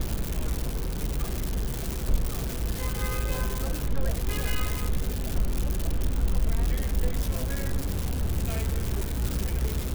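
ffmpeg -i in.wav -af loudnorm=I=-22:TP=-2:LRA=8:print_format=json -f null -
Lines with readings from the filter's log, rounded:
"input_i" : "-30.3",
"input_tp" : "-12.0",
"input_lra" : "1.2",
"input_thresh" : "-40.3",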